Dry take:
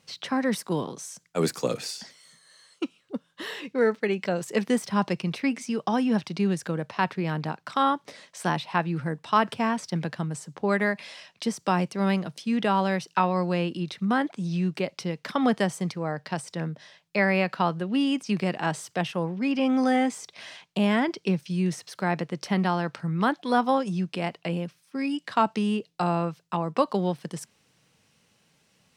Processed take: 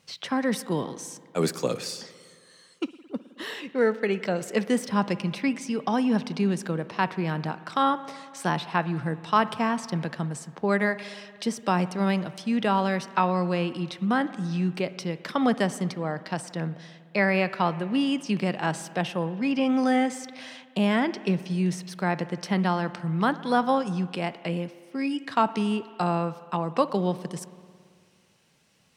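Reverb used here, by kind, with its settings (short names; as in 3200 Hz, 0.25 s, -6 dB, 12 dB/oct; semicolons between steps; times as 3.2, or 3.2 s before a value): spring tank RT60 2.1 s, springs 55 ms, chirp 75 ms, DRR 15 dB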